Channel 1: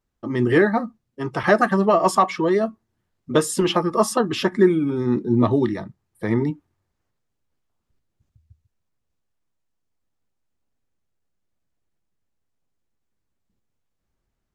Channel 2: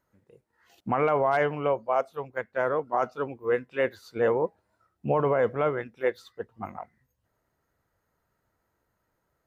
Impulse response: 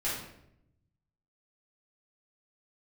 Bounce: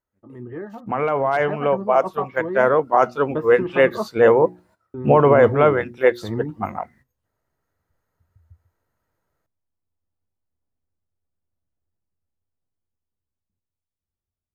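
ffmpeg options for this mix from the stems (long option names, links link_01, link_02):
-filter_complex "[0:a]lowpass=1300,equalizer=frequency=86:width_type=o:width=0.46:gain=12.5,volume=-17dB,asplit=3[link_01][link_02][link_03];[link_01]atrim=end=4.08,asetpts=PTS-STARTPTS,afade=type=out:start_time=4.076:duration=0.004:curve=hsin[link_04];[link_02]atrim=start=4.08:end=4.94,asetpts=PTS-STARTPTS,volume=0[link_05];[link_03]atrim=start=4.94,asetpts=PTS-STARTPTS,afade=type=in:duration=0.004:curve=hsin[link_06];[link_04][link_05][link_06]concat=n=3:v=0:a=1[link_07];[1:a]bandreject=frequency=60:width_type=h:width=6,bandreject=frequency=120:width_type=h:width=6,bandreject=frequency=180:width_type=h:width=6,bandreject=frequency=240:width_type=h:width=6,bandreject=frequency=300:width_type=h:width=6,bandreject=frequency=360:width_type=h:width=6,agate=range=-14dB:threshold=-60dB:ratio=16:detection=peak,volume=1dB[link_08];[link_07][link_08]amix=inputs=2:normalize=0,dynaudnorm=framelen=340:gausssize=11:maxgain=12dB"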